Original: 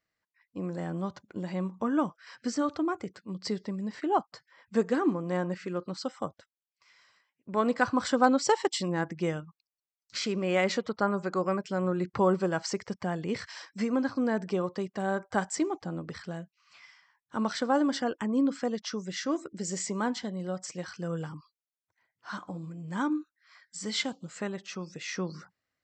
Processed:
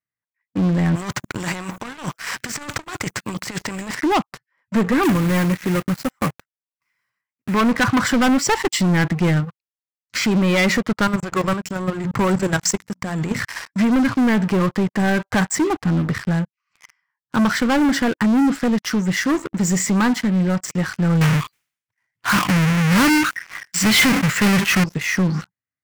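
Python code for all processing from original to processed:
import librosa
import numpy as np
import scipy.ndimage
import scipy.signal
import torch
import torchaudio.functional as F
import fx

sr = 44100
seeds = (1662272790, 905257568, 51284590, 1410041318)

y = fx.chain(x, sr, fx.high_shelf(hz=4900.0, db=10.5),
    fx.over_compress(threshold_db=-38.0, ratio=-1.0),
    fx.spectral_comp(ratio=2.0), at=(0.95, 3.95))
y = fx.chain(y, sr, fx.block_float(bits=3),
    fx.tremolo_shape(shape='saw_down', hz=1.7, depth_pct=40), at=(5.03, 7.54))
y = fx.chain(y, sr, fx.peak_eq(hz=7300.0, db=12.5, octaves=0.97),
    fx.hum_notches(base_hz=60, count=5),
    fx.level_steps(step_db=14), at=(11.07, 13.39))
y = fx.chain(y, sr, fx.halfwave_hold(),
    fx.peak_eq(hz=3400.0, db=10.0, octaves=2.3),
    fx.sustainer(db_per_s=94.0), at=(21.21, 24.84))
y = fx.graphic_eq_10(y, sr, hz=(125, 250, 1000, 2000, 4000), db=(11, 3, 3, 6, -8))
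y = fx.leveller(y, sr, passes=5)
y = fx.peak_eq(y, sr, hz=540.0, db=-4.0, octaves=1.8)
y = y * 10.0 ** (-4.0 / 20.0)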